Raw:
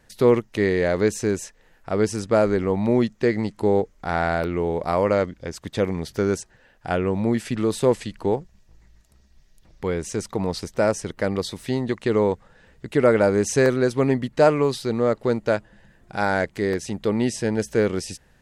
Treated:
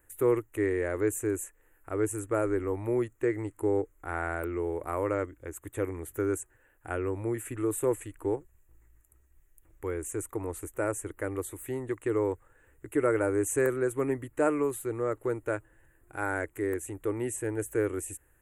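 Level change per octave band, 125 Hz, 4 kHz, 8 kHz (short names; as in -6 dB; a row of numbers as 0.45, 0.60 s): -10.0 dB, under -20 dB, -3.5 dB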